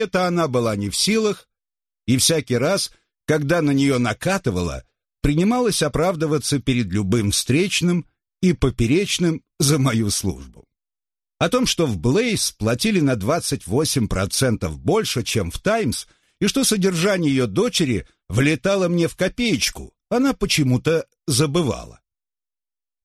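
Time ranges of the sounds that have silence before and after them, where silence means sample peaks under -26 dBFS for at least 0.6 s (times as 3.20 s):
2.08–10.32 s
11.41–21.83 s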